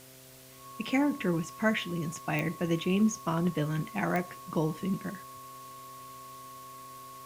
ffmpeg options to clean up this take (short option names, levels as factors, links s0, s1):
-af "adeclick=t=4,bandreject=f=130.5:t=h:w=4,bandreject=f=261:t=h:w=4,bandreject=f=391.5:t=h:w=4,bandreject=f=522:t=h:w=4,bandreject=f=652.5:t=h:w=4,bandreject=f=1100:w=30,afwtdn=0.0022"